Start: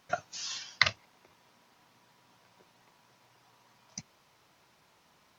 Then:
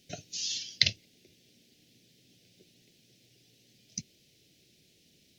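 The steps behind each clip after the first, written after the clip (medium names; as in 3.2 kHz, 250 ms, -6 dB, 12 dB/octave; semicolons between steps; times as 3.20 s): Chebyshev band-stop 360–3200 Hz, order 2; trim +5 dB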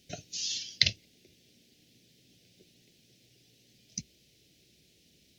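peaking EQ 61 Hz +11.5 dB 0.34 oct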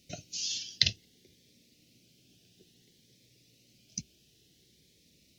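Shepard-style phaser rising 0.57 Hz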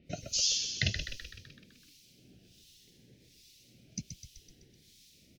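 harmonic tremolo 1.3 Hz, depth 100%, crossover 2.2 kHz; on a send: frequency-shifting echo 127 ms, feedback 59%, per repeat -48 Hz, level -7 dB; on the sum: trim +7 dB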